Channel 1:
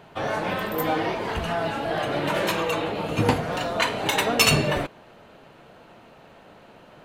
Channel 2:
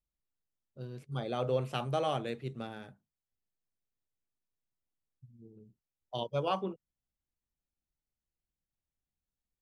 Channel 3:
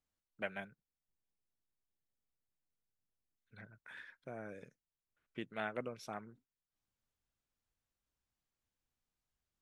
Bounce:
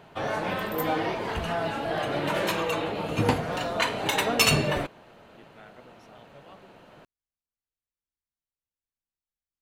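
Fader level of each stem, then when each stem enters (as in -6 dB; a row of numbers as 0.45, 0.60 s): -2.5, -19.5, -11.0 dB; 0.00, 0.00, 0.00 s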